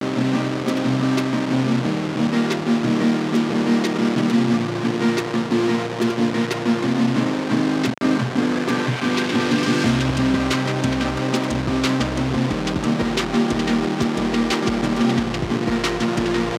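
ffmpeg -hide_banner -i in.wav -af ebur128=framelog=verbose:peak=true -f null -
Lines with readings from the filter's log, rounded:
Integrated loudness:
  I:         -20.4 LUFS
  Threshold: -30.4 LUFS
Loudness range:
  LRA:         1.1 LU
  Threshold: -40.3 LUFS
  LRA low:   -20.9 LUFS
  LRA high:  -19.8 LUFS
True peak:
  Peak:       -5.4 dBFS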